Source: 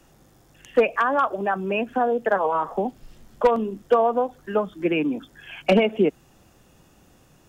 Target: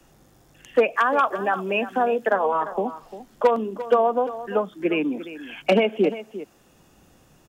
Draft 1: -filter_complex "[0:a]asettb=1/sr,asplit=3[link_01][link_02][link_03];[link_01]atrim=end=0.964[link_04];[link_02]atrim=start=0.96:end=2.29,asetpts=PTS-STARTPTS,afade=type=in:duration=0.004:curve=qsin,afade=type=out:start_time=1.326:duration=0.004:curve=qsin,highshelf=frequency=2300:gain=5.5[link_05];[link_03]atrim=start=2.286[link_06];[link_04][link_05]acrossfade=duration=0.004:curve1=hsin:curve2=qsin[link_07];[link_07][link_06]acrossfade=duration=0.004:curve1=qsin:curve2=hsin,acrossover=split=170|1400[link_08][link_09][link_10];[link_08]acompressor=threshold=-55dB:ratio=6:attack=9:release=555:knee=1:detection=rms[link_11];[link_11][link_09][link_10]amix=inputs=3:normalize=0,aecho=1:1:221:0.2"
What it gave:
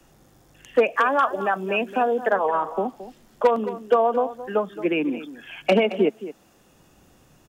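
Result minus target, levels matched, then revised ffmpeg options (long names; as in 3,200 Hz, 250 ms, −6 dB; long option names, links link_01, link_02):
echo 127 ms early
-filter_complex "[0:a]asettb=1/sr,asplit=3[link_01][link_02][link_03];[link_01]atrim=end=0.964[link_04];[link_02]atrim=start=0.96:end=2.29,asetpts=PTS-STARTPTS,afade=type=in:duration=0.004:curve=qsin,afade=type=out:start_time=1.326:duration=0.004:curve=qsin,highshelf=frequency=2300:gain=5.5[link_05];[link_03]atrim=start=2.286[link_06];[link_04][link_05]acrossfade=duration=0.004:curve1=hsin:curve2=qsin[link_07];[link_07][link_06]acrossfade=duration=0.004:curve1=qsin:curve2=hsin,acrossover=split=170|1400[link_08][link_09][link_10];[link_08]acompressor=threshold=-55dB:ratio=6:attack=9:release=555:knee=1:detection=rms[link_11];[link_11][link_09][link_10]amix=inputs=3:normalize=0,aecho=1:1:348:0.2"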